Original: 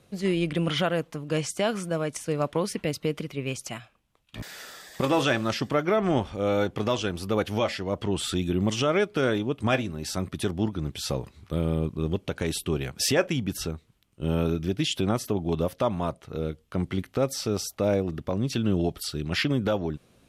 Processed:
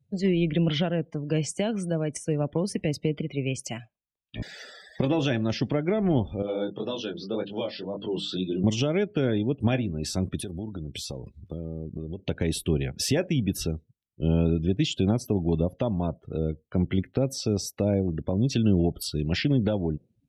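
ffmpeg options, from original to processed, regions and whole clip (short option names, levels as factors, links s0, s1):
-filter_complex "[0:a]asettb=1/sr,asplit=3[s0][s1][s2];[s0]atrim=end=6.424[s3];[s1]atrim=start=6.42:end=8.64,asetpts=PTS-STARTPTS,afade=t=in:d=0.004:c=qsin,afade=t=out:st=2.216:d=0.004:c=qsin,bandreject=f=50:t=h:w=6,bandreject=f=100:t=h:w=6,bandreject=f=150:t=h:w=6,bandreject=f=200:t=h:w=6,bandreject=f=250:t=h:w=6,bandreject=f=300:t=h:w=6,flanger=delay=20:depth=6.1:speed=1.9,highpass=f=150:w=0.5412,highpass=f=150:w=1.3066,equalizer=f=220:t=q:w=4:g=-4,equalizer=f=730:t=q:w=4:g=-4,equalizer=f=2100:t=q:w=4:g=-8,equalizer=f=3900:t=q:w=4:g=4,lowpass=f=6500:w=0.5412,lowpass=f=6500:w=1.3066[s4];[s2]atrim=start=8.636[s5];[s3][s4]acrossfade=d=0.004:c1=hsin:c2=qsin[s6];[s6][s5]acrossfade=d=0.004:c1=qsin:c2=hsin,asettb=1/sr,asplit=3[s7][s8][s9];[s7]atrim=end=10.364[s10];[s8]atrim=start=10.36:end=12.19,asetpts=PTS-STARTPTS,afade=t=in:d=0.004:c=qsin,afade=t=out:st=1.826:d=0.004:c=qsin,highshelf=f=4800:g=6,acompressor=threshold=0.0224:ratio=12:attack=3.2:release=140:knee=1:detection=peak[s11];[s9]atrim=start=12.186[s12];[s10][s11]acrossfade=d=0.004:c1=hsin:c2=qsin[s13];[s13][s12]acrossfade=d=0.004:c1=qsin:c2=hsin,acrossover=split=300[s14][s15];[s15]acompressor=threshold=0.0178:ratio=2[s16];[s14][s16]amix=inputs=2:normalize=0,afftdn=nr=32:nf=-45,equalizer=f=1200:t=o:w=0.56:g=-11.5,volume=1.58"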